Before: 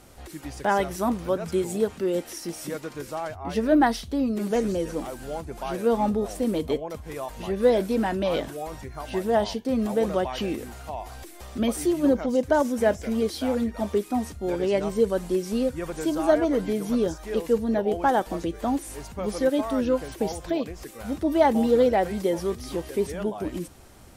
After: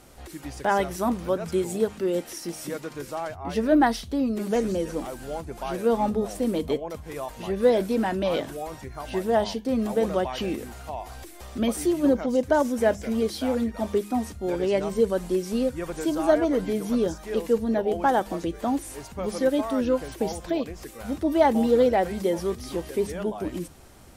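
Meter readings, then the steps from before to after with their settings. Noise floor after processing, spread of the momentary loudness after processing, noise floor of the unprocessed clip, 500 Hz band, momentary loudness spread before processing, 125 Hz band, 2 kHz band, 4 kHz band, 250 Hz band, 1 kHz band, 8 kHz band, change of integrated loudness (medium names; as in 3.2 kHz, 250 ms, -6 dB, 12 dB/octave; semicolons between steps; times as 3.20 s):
-44 dBFS, 13 LU, -45 dBFS, 0.0 dB, 13 LU, -0.5 dB, 0.0 dB, 0.0 dB, 0.0 dB, 0.0 dB, 0.0 dB, 0.0 dB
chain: de-hum 51.34 Hz, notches 4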